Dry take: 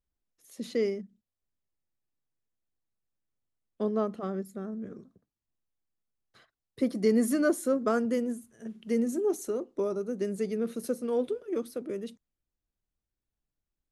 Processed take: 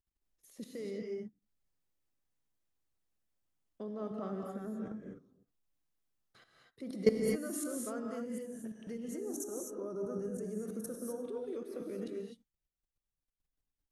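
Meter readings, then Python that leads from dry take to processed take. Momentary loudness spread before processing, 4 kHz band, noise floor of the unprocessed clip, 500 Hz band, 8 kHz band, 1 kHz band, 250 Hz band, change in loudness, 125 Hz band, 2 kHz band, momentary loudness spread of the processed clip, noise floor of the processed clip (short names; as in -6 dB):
14 LU, -6.5 dB, under -85 dBFS, -8.0 dB, -2.0 dB, -10.5 dB, -9.0 dB, -8.5 dB, n/a, -10.5 dB, 13 LU, under -85 dBFS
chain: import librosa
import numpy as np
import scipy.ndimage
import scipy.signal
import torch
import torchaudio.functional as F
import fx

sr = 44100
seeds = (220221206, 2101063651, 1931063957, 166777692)

y = fx.level_steps(x, sr, step_db=21)
y = fx.spec_box(y, sr, start_s=9.13, length_s=2.12, low_hz=1800.0, high_hz=5400.0, gain_db=-13)
y = fx.rev_gated(y, sr, seeds[0], gate_ms=280, shape='rising', drr_db=0.5)
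y = y * 10.0 ** (1.0 / 20.0)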